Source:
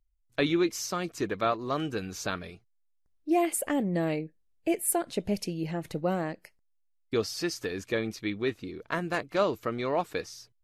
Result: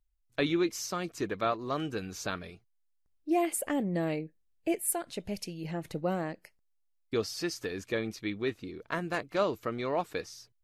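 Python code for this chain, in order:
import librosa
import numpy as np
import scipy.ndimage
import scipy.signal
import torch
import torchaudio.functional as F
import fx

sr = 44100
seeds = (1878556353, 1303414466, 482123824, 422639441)

y = fx.peak_eq(x, sr, hz=310.0, db=-5.5, octaves=2.8, at=(4.78, 5.65))
y = F.gain(torch.from_numpy(y), -2.5).numpy()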